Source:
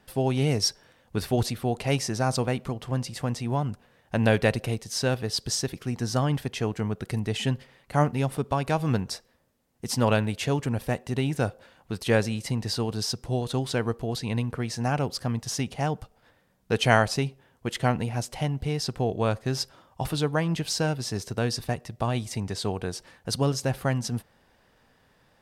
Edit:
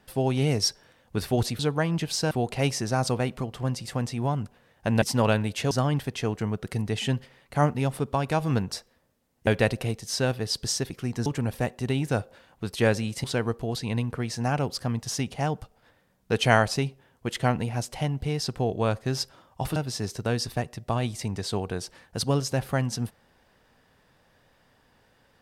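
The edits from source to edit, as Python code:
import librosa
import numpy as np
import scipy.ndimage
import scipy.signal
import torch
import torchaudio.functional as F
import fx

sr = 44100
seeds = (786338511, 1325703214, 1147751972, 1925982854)

y = fx.edit(x, sr, fx.swap(start_s=4.3, length_s=1.79, other_s=9.85, other_length_s=0.69),
    fx.cut(start_s=12.52, length_s=1.12),
    fx.move(start_s=20.16, length_s=0.72, to_s=1.59), tone=tone)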